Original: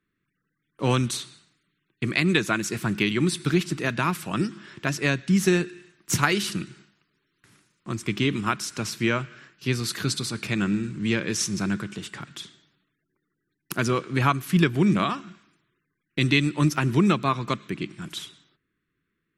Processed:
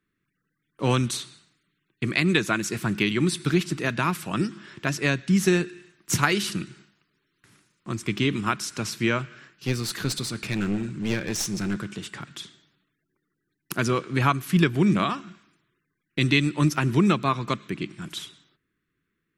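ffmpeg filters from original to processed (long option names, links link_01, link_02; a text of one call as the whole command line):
ffmpeg -i in.wav -filter_complex "[0:a]asettb=1/sr,asplit=3[link_01][link_02][link_03];[link_01]atrim=end=9.194[link_04];[link_02]atrim=start=9.19:end=11.87,asetpts=PTS-STARTPTS,afade=type=in:duration=0.004:curve=qsin,afade=type=out:start_time=2.676:duration=0.004:curve=qsin,aeval=exprs='clip(val(0),-1,0.0398)':channel_layout=same[link_05];[link_03]atrim=start=11.866[link_06];[link_04][link_05]acrossfade=duration=0.004:curve1=hsin:curve2=qsin[link_07];[link_07][link_06]acrossfade=duration=0.004:curve1=qsin:curve2=hsin" out.wav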